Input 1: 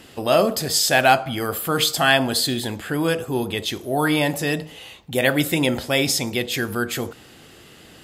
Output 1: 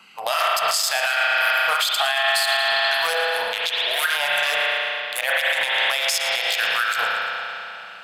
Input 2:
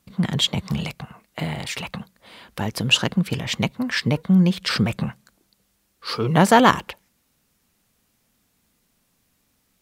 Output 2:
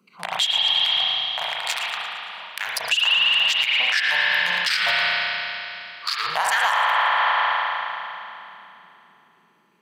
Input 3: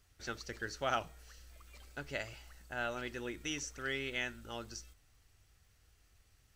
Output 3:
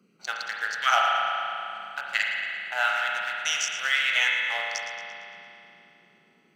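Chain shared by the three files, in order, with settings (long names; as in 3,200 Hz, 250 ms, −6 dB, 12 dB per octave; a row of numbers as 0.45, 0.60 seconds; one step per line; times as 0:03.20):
adaptive Wiener filter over 25 samples
auto-filter high-pass sine 2.8 Hz 680–1,900 Hz
spring reverb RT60 2.9 s, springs 34 ms, chirp 50 ms, DRR −1.5 dB
noise in a band 180–400 Hz −59 dBFS
guitar amp tone stack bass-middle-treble 10-0-10
downward compressor 6 to 1, threshold −30 dBFS
low-shelf EQ 84 Hz +5.5 dB
wave folding −17.5 dBFS
brickwall limiter −26 dBFS
delay with a high-pass on its return 114 ms, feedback 52%, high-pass 2,700 Hz, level −11 dB
normalise the peak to −9 dBFS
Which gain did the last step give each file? +15.5, +15.5, +17.0 decibels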